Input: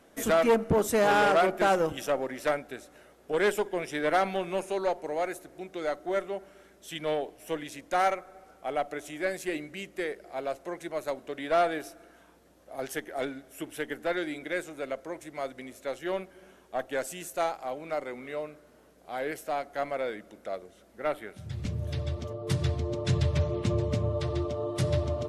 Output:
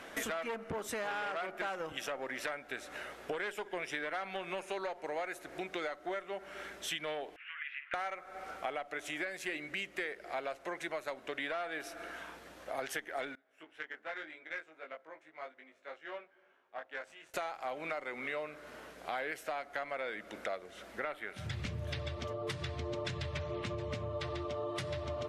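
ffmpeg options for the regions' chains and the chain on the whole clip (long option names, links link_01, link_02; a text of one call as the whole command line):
ffmpeg -i in.wav -filter_complex "[0:a]asettb=1/sr,asplit=3[link_01][link_02][link_03];[link_01]atrim=end=7.364[link_04];[link_02]atrim=start=7.36:end=7.94,asetpts=PTS-STARTPTS,afade=type=in:duration=0.004:curve=qsin,afade=type=out:start_time=0.576:duration=0.004:curve=qsin,acompressor=threshold=-49dB:ratio=2.5:attack=3.2:release=140:knee=1:detection=peak,asuperpass=centerf=1900:order=8:qfactor=1.2,asplit=2[link_05][link_06];[link_06]adelay=49,volume=-11dB[link_07];[link_05][link_07]amix=inputs=2:normalize=0,atrim=end_sample=25578[link_08];[link_03]atrim=start=7.936[link_09];[link_04][link_08]acrossfade=duration=0.004:curve1=hsin:curve2=qsin[link_10];[link_10][link_09]acrossfade=duration=0.004:curve1=qsin:curve2=hsin,asettb=1/sr,asplit=3[link_11][link_12][link_13];[link_11]atrim=end=13.354[link_14];[link_12]atrim=start=13.35:end=17.34,asetpts=PTS-STARTPTS,afade=type=in:duration=0.004:curve=qsin,afade=type=out:start_time=3.986:duration=0.004:curve=qsin,aderivative,asplit=2[link_15][link_16];[link_16]adelay=19,volume=-2dB[link_17];[link_15][link_17]amix=inputs=2:normalize=0,atrim=end_sample=175959,adynamicsmooth=sensitivity=3:basefreq=890[link_18];[link_13]atrim=start=17.336[link_19];[link_14][link_18]acrossfade=duration=0.004:curve1=hsin:curve2=qsin[link_20];[link_20][link_19]acrossfade=duration=0.004:curve1=qsin:curve2=hsin,alimiter=level_in=0.5dB:limit=-24dB:level=0:latency=1:release=438,volume=-0.5dB,equalizer=frequency=2000:width_type=o:width=3:gain=13,acompressor=threshold=-40dB:ratio=4,volume=2.5dB" out.wav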